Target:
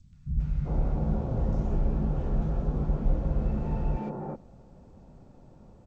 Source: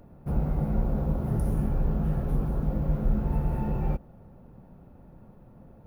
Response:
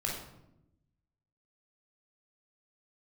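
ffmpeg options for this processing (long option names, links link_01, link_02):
-filter_complex "[0:a]acrossover=split=170|1600[link_01][link_02][link_03];[link_03]adelay=130[link_04];[link_02]adelay=390[link_05];[link_01][link_05][link_04]amix=inputs=3:normalize=0" -ar 16000 -c:a g722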